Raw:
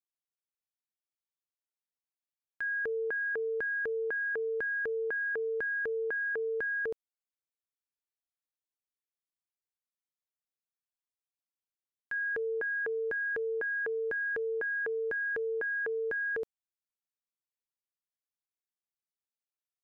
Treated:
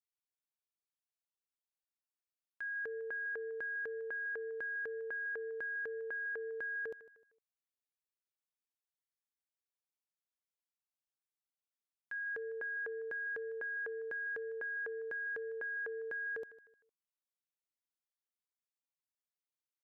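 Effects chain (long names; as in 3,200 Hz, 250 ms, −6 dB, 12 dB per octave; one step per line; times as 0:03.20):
low-shelf EQ 250 Hz −8.5 dB
repeating echo 153 ms, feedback 36%, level −17.5 dB
level −7 dB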